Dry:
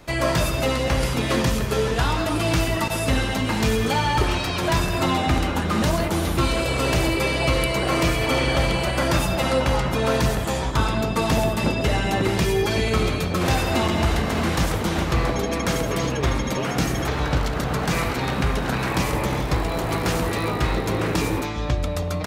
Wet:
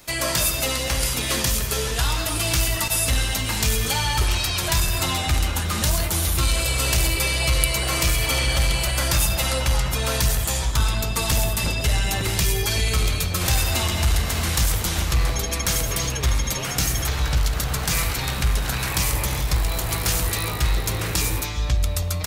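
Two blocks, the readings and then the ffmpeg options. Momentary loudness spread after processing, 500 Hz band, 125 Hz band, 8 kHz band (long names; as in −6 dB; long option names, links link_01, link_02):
3 LU, −7.5 dB, 0.0 dB, +9.5 dB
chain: -af "asubboost=boost=5:cutoff=100,acontrast=26,crystalizer=i=6:c=0,volume=-11.5dB"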